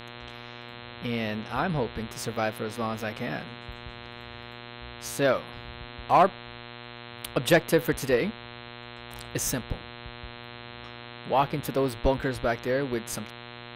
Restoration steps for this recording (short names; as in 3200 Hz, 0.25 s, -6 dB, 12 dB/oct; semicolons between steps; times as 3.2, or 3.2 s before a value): de-hum 119.8 Hz, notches 35